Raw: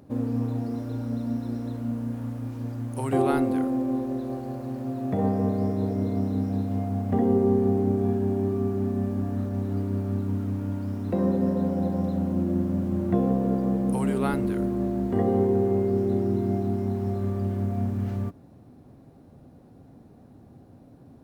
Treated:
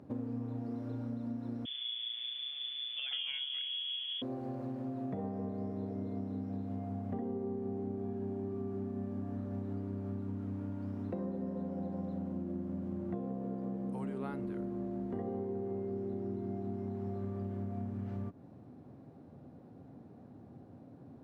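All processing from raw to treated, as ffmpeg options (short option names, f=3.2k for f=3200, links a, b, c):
-filter_complex "[0:a]asettb=1/sr,asplit=3[a][b][c];[a]atrim=end=1.654[d];[b]atrim=start=1.65:end=4.22,asetpts=PTS-STARTPTS,afade=t=in:d=0.004:c=qsin,afade=t=out:st=2.566:d=0.004:c=qsin,equalizer=f=2.5k:t=o:w=0.21:g=-6,lowpass=f=3.1k:t=q:w=0.5098,lowpass=f=3.1k:t=q:w=0.6013,lowpass=f=3.1k:t=q:w=0.9,lowpass=f=3.1k:t=q:w=2.563,afreqshift=-3600[e];[c]atrim=start=4.216[f];[d][e]acrossfade=d=0.004:c1=hsin:c2=qsin[g];[g][f]acrossfade=d=0.004:c1=qsin:c2=hsin,highpass=98,aemphasis=mode=reproduction:type=75kf,acompressor=threshold=-34dB:ratio=6,volume=-2dB"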